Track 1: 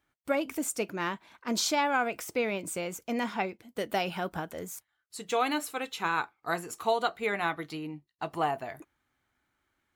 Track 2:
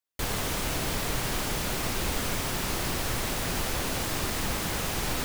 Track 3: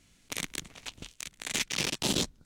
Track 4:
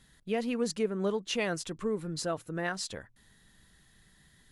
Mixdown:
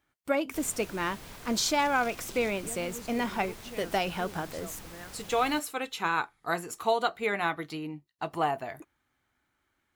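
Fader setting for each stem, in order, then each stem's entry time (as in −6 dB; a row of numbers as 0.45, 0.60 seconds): +1.0, −17.0, −19.5, −13.5 decibels; 0.00, 0.35, 0.25, 2.35 seconds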